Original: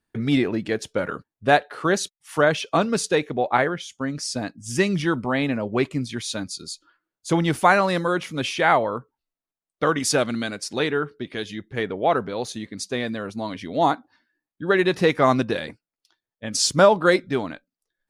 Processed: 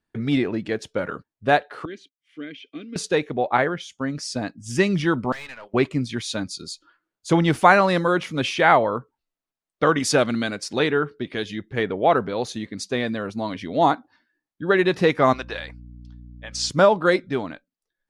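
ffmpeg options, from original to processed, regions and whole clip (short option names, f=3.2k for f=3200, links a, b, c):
-filter_complex "[0:a]asettb=1/sr,asplit=3[a][b][c];[a]atrim=end=1.854[d];[b]atrim=start=1.85:end=2.96,asetpts=PTS-STARTPTS,afade=t=in:d=0.004:c=qsin,afade=t=out:st=1.106:d=0.004:c=qsin,asplit=3[e][f][g];[e]bandpass=f=270:t=q:w=8,volume=0dB[h];[f]bandpass=f=2.29k:t=q:w=8,volume=-6dB[i];[g]bandpass=f=3.01k:t=q:w=8,volume=-9dB[j];[h][i][j]amix=inputs=3:normalize=0,aecho=1:1:2.5:0.33,atrim=end_sample=48951[k];[c]atrim=start=2.956[l];[d][k]acrossfade=d=0.004:c1=hsin:c2=qsin[m];[m][l]acrossfade=d=0.004:c1=qsin:c2=hsin,asettb=1/sr,asplit=3[n][o][p];[n]atrim=end=5.324[q];[o]atrim=start=5.32:end=5.74,asetpts=PTS-STARTPTS,afade=t=in:d=0.004:c=qsin,afade=t=out:st=0.416:d=0.004:c=qsin,highpass=1.2k,aeval=exprs='(tanh(50.1*val(0)+0.5)-tanh(0.5))/50.1':c=same[r];[p]atrim=start=5.736[s];[q][r]acrossfade=d=0.004:c1=hsin:c2=qsin[t];[t][s]acrossfade=d=0.004:c1=qsin:c2=hsin,asettb=1/sr,asplit=3[u][v][w];[u]atrim=end=15.334[x];[v]atrim=start=15.33:end=16.7,asetpts=PTS-STARTPTS,afade=t=in:d=0.004:c=qsin,afade=t=out:st=1.366:d=0.004:c=qsin,highpass=750,lowpass=7.4k,aeval=exprs='val(0)+0.01*(sin(2*PI*60*n/s)+sin(2*PI*2*60*n/s)/2+sin(2*PI*3*60*n/s)/3+sin(2*PI*4*60*n/s)/4+sin(2*PI*5*60*n/s)/5)':c=same[y];[w]atrim=start=16.696[z];[x][y]acrossfade=d=0.004:c1=hsin:c2=qsin[aa];[aa][z]acrossfade=d=0.004:c1=qsin:c2=hsin,highshelf=f=8.6k:g=-11,dynaudnorm=f=680:g=13:m=11.5dB,volume=-1dB"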